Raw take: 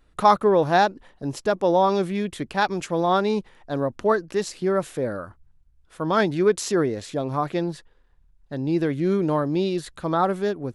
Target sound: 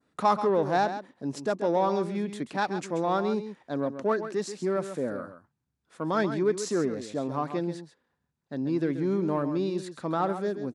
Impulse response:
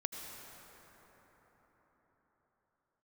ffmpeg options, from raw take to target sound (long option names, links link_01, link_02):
-filter_complex "[0:a]adynamicequalizer=threshold=0.00891:dfrequency=3000:dqfactor=1:tfrequency=3000:tqfactor=1:attack=5:release=100:ratio=0.375:range=2.5:mode=cutabove:tftype=bell,asplit=2[link_01][link_02];[link_02]asoftclip=type=tanh:threshold=-21.5dB,volume=-4.5dB[link_03];[link_01][link_03]amix=inputs=2:normalize=0,highpass=frequency=110:width=0.5412,highpass=frequency=110:width=1.3066,equalizer=frequency=120:width_type=q:width=4:gain=-5,equalizer=frequency=250:width_type=q:width=4:gain=5,equalizer=frequency=3000:width_type=q:width=4:gain=-4,lowpass=frequency=9500:width=0.5412,lowpass=frequency=9500:width=1.3066,aecho=1:1:134:0.299,volume=-8.5dB"